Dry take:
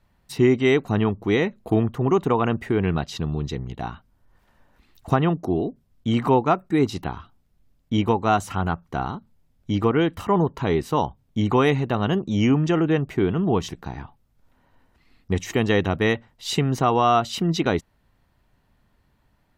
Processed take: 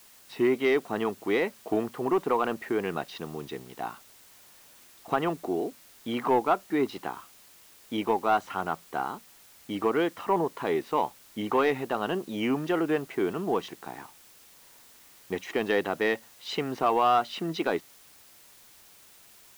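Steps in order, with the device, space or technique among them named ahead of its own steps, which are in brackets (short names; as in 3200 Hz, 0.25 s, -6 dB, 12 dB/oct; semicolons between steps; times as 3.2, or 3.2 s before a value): tape answering machine (BPF 350–3100 Hz; soft clip -11 dBFS, distortion -20 dB; wow and flutter; white noise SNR 25 dB); gain -2 dB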